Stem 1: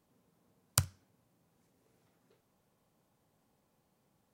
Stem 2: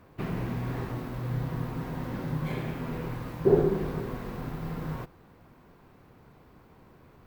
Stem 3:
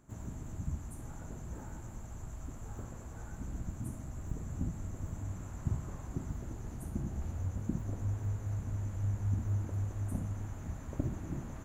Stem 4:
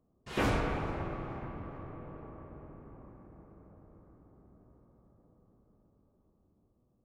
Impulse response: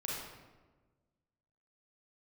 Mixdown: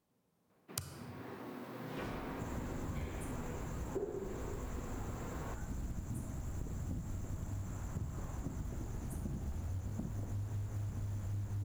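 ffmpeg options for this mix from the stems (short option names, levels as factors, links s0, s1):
-filter_complex "[0:a]dynaudnorm=f=290:g=3:m=3.35,volume=0.422,asplit=2[s0][s1];[s1]volume=0.355[s2];[1:a]highpass=f=200:w=0.5412,highpass=f=200:w=1.3066,dynaudnorm=f=260:g=7:m=3.35,adelay=500,volume=0.158[s3];[2:a]acrusher=bits=6:mode=log:mix=0:aa=0.000001,asoftclip=type=tanh:threshold=0.0376,adelay=2300,volume=1.33[s4];[3:a]adelay=1600,volume=0.211[s5];[4:a]atrim=start_sample=2205[s6];[s2][s6]afir=irnorm=-1:irlink=0[s7];[s0][s3][s4][s5][s7]amix=inputs=5:normalize=0,acompressor=threshold=0.0141:ratio=6"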